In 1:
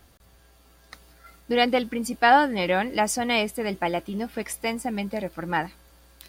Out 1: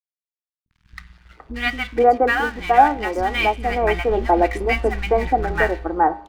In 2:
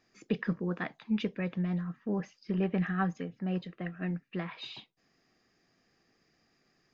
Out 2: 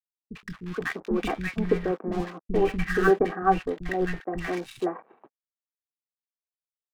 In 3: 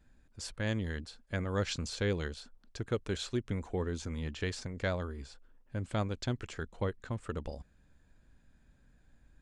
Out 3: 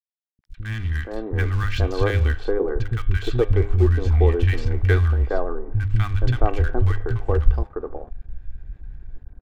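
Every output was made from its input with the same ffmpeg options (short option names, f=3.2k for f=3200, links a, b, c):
-filter_complex "[0:a]lowpass=2.1k,aecho=1:1:2.6:0.55,bandreject=f=101.1:t=h:w=4,bandreject=f=202.2:t=h:w=4,bandreject=f=303.3:t=h:w=4,bandreject=f=404.4:t=h:w=4,bandreject=f=505.5:t=h:w=4,bandreject=f=606.6:t=h:w=4,bandreject=f=707.7:t=h:w=4,bandreject=f=808.8:t=h:w=4,bandreject=f=909.9:t=h:w=4,bandreject=f=1.011k:t=h:w=4,bandreject=f=1.1121k:t=h:w=4,bandreject=f=1.2132k:t=h:w=4,bandreject=f=1.3143k:t=h:w=4,bandreject=f=1.4154k:t=h:w=4,bandreject=f=1.5165k:t=h:w=4,bandreject=f=1.6176k:t=h:w=4,bandreject=f=1.7187k:t=h:w=4,bandreject=f=1.8198k:t=h:w=4,bandreject=f=1.9209k:t=h:w=4,bandreject=f=2.022k:t=h:w=4,bandreject=f=2.1231k:t=h:w=4,bandreject=f=2.2242k:t=h:w=4,bandreject=f=2.3253k:t=h:w=4,bandreject=f=2.4264k:t=h:w=4,bandreject=f=2.5275k:t=h:w=4,bandreject=f=2.6286k:t=h:w=4,bandreject=f=2.7297k:t=h:w=4,bandreject=f=2.8308k:t=h:w=4,bandreject=f=2.9319k:t=h:w=4,bandreject=f=3.033k:t=h:w=4,bandreject=f=3.1341k:t=h:w=4,bandreject=f=3.2352k:t=h:w=4,bandreject=f=3.3363k:t=h:w=4,bandreject=f=3.4374k:t=h:w=4,bandreject=f=3.5385k:t=h:w=4,bandreject=f=3.6396k:t=h:w=4,bandreject=f=3.7407k:t=h:w=4,bandreject=f=3.8418k:t=h:w=4,bandreject=f=3.9429k:t=h:w=4,asubboost=boost=9.5:cutoff=61,dynaudnorm=f=450:g=3:m=13dB,aeval=exprs='sgn(val(0))*max(abs(val(0))-0.0126,0)':c=same,acrossover=split=220|1200[a][b][c];[c]adelay=50[d];[b]adelay=470[e];[a][e][d]amix=inputs=3:normalize=0,volume=1.5dB"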